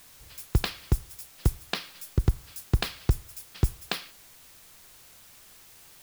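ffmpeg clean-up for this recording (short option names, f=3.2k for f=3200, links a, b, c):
-af "afwtdn=0.0022"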